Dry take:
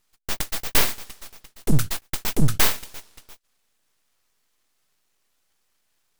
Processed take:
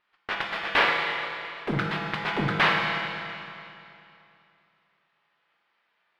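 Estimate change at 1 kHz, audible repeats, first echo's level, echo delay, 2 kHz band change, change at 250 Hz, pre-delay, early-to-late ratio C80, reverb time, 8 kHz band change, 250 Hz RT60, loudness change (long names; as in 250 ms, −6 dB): +8.0 dB, no echo audible, no echo audible, no echo audible, +7.5 dB, −3.5 dB, 6 ms, 2.0 dB, 2.7 s, below −20 dB, 2.7 s, −2.5 dB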